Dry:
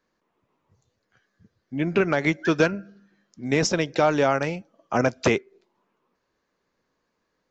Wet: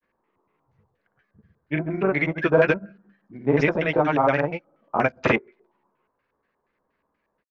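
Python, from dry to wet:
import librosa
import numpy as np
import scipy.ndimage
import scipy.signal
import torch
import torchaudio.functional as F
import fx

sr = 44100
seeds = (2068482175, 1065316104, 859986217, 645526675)

y = fx.doubler(x, sr, ms=14.0, db=-7)
y = fx.granulator(y, sr, seeds[0], grain_ms=100.0, per_s=20.0, spray_ms=100.0, spread_st=0)
y = fx.filter_lfo_lowpass(y, sr, shape='square', hz=4.2, low_hz=970.0, high_hz=2300.0, q=1.9)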